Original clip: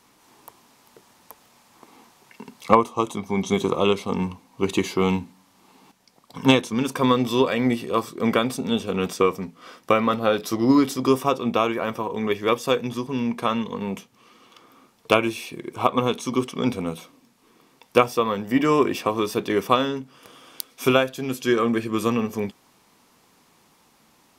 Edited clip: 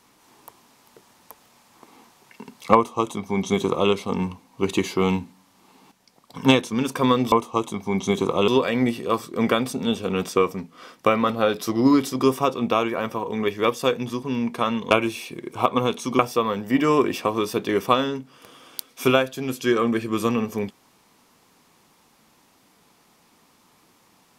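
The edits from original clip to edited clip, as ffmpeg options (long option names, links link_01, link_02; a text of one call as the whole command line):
ffmpeg -i in.wav -filter_complex "[0:a]asplit=5[link_01][link_02][link_03][link_04][link_05];[link_01]atrim=end=7.322[link_06];[link_02]atrim=start=2.748:end=3.912[link_07];[link_03]atrim=start=7.318:end=13.752[link_08];[link_04]atrim=start=15.118:end=16.402[link_09];[link_05]atrim=start=17.998[link_10];[link_06][link_07]acrossfade=duration=0.004:curve1=hsin:curve2=hsin[link_11];[link_11][link_08]acrossfade=duration=0.004:curve1=hsin:curve2=hsin[link_12];[link_12][link_09]acrossfade=duration=0.004:curve1=hsin:curve2=hsin[link_13];[link_13][link_10]acrossfade=duration=0.004:curve1=hsin:curve2=hsin" out.wav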